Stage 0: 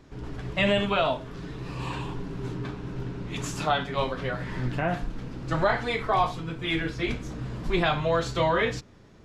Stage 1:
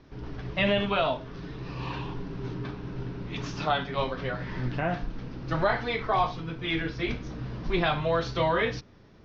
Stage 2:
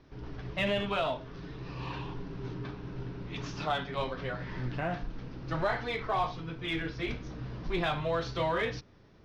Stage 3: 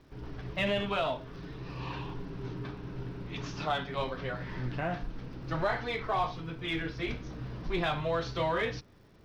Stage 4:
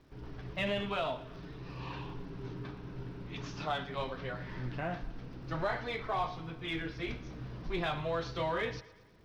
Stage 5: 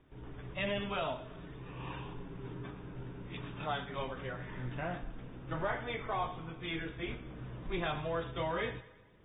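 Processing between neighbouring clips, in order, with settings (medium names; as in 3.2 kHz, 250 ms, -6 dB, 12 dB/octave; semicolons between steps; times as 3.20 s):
steep low-pass 6 kHz 72 dB/octave; trim -1.5 dB
peaking EQ 220 Hz -2.5 dB 0.4 oct; in parallel at -8.5 dB: hard clipper -27 dBFS, distortion -8 dB; on the sum: trim -6.5 dB
crackle 230 per s -60 dBFS
thinning echo 115 ms, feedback 51%, high-pass 190 Hz, level -18 dB; trim -3.5 dB
on a send at -22 dB: reverberation RT60 0.60 s, pre-delay 54 ms; on the sum: trim -2 dB; AAC 16 kbps 32 kHz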